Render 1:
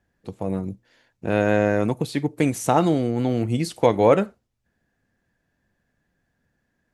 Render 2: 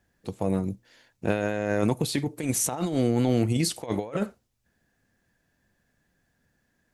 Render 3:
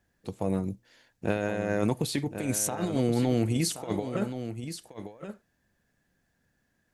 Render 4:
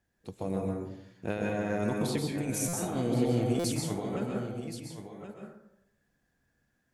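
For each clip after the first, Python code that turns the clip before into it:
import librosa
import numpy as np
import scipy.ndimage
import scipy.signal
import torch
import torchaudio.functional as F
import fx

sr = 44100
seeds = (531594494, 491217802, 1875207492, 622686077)

y1 = fx.high_shelf(x, sr, hz=3800.0, db=7.5)
y1 = fx.over_compress(y1, sr, threshold_db=-22.0, ratio=-0.5)
y1 = F.gain(torch.from_numpy(y1), -2.5).numpy()
y2 = y1 + 10.0 ** (-10.0 / 20.0) * np.pad(y1, (int(1075 * sr / 1000.0), 0))[:len(y1)]
y2 = F.gain(torch.from_numpy(y2), -2.5).numpy()
y3 = fx.rev_plate(y2, sr, seeds[0], rt60_s=0.8, hf_ratio=0.45, predelay_ms=115, drr_db=-0.5)
y3 = fx.buffer_glitch(y3, sr, at_s=(2.68, 3.59), block=256, repeats=8)
y3 = F.gain(torch.from_numpy(y3), -5.5).numpy()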